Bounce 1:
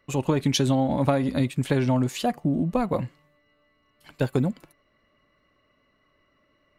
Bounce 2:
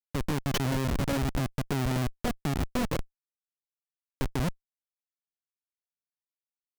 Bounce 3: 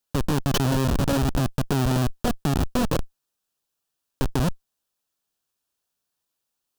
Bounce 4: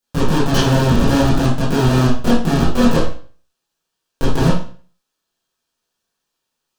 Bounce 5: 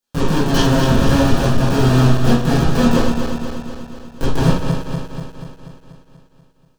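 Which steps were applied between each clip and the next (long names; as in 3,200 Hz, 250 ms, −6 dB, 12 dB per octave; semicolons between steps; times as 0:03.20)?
low-pass that shuts in the quiet parts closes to 580 Hz, open at −18.5 dBFS; comparator with hysteresis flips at −21 dBFS
parametric band 2,100 Hz −11 dB 0.3 octaves; in parallel at 0 dB: compressor whose output falls as the input rises −37 dBFS, ratio −1; on the sum: level +4 dB
convolution reverb RT60 0.40 s, pre-delay 16 ms, DRR −9.5 dB; level −1.5 dB
feedback delay that plays each chunk backwards 121 ms, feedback 77%, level −6.5 dB; level −1.5 dB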